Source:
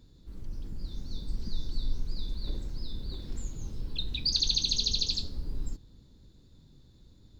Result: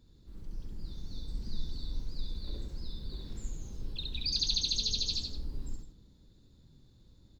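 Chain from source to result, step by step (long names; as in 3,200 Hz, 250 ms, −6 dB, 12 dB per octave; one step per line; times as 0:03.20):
loudspeakers that aren't time-aligned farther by 23 metres −2 dB, 56 metres −11 dB
level −5.5 dB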